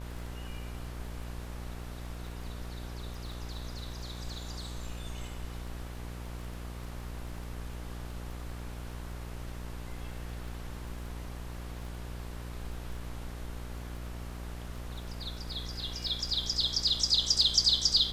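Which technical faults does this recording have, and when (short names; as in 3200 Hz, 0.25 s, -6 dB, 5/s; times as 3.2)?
buzz 60 Hz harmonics 20 -41 dBFS
crackle 16/s -41 dBFS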